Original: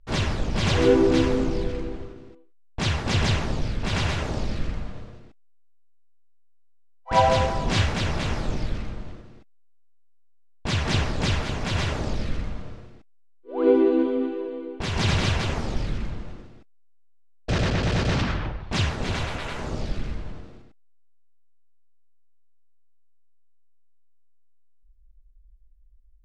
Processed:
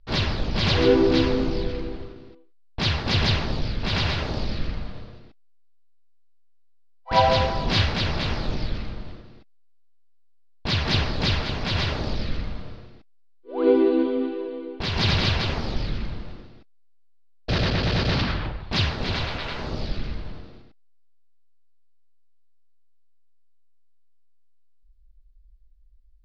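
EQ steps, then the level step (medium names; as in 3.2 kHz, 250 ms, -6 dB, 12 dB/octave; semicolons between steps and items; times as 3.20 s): resonant high shelf 6.1 kHz -11 dB, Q 3; 0.0 dB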